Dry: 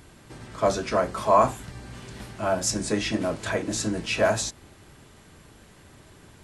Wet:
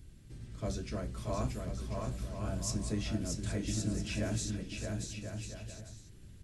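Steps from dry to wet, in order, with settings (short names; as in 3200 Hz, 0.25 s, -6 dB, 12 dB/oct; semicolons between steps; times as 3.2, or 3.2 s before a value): passive tone stack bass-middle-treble 10-0-1; on a send: bouncing-ball echo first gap 0.63 s, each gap 0.65×, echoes 5; on the sum: gain +9 dB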